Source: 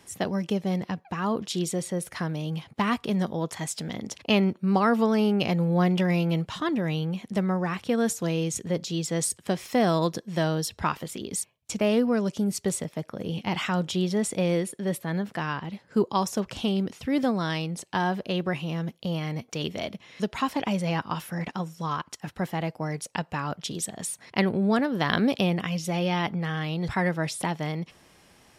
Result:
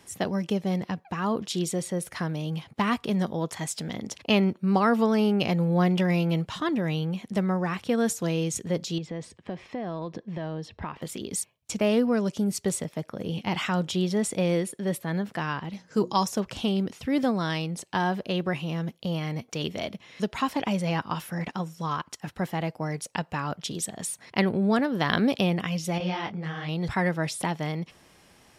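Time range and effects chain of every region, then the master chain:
8.98–11.02 LPF 2400 Hz + bell 1400 Hz -7 dB 0.24 oct + compressor 5:1, threshold -30 dBFS
15.73–16.26 bell 6100 Hz +15 dB 0.48 oct + notches 60/120/180/240/300/360 Hz + comb 6.3 ms, depth 32%
25.98–26.69 LPF 8700 Hz 24 dB/oct + detuned doubles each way 48 cents
whole clip: dry

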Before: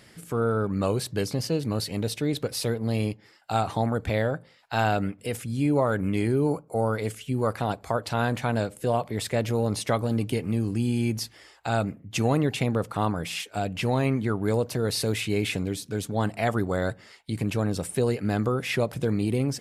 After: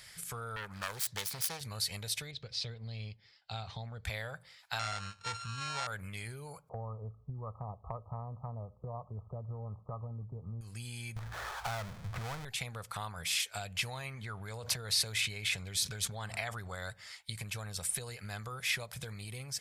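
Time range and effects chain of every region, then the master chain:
0.56–1.61 self-modulated delay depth 0.56 ms + low shelf 130 Hz -11 dB
2.31–4.05 LPF 4500 Hz 24 dB/oct + bell 1300 Hz -12 dB 2.4 oct
4.79–5.87 sample sorter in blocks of 32 samples + Bessel low-pass 5100 Hz, order 8 + doubler 19 ms -12.5 dB
6.69–10.61 brick-wall FIR low-pass 1300 Hz + low shelf 410 Hz +9 dB
11.16–12.45 steep low-pass 1500 Hz 48 dB/oct + power-law curve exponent 0.5
14.14–16.75 high shelf 8300 Hz -9.5 dB + fast leveller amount 70%
whole clip: compressor, threshold -30 dBFS; passive tone stack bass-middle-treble 10-0-10; notch 2800 Hz, Q 14; gain +5.5 dB

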